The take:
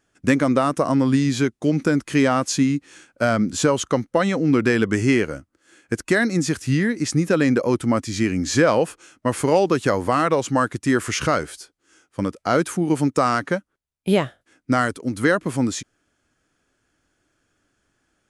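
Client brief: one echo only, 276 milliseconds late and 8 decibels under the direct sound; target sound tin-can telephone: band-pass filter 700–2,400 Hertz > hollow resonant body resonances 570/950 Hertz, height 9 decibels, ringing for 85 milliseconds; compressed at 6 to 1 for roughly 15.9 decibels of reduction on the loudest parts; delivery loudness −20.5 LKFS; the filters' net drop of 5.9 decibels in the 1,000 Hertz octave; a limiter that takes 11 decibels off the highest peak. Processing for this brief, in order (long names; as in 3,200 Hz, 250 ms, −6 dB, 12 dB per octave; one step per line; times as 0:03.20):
parametric band 1,000 Hz −6.5 dB
downward compressor 6 to 1, threshold −32 dBFS
brickwall limiter −29 dBFS
band-pass filter 700–2,400 Hz
single-tap delay 276 ms −8 dB
hollow resonant body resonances 570/950 Hz, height 9 dB, ringing for 85 ms
level +26 dB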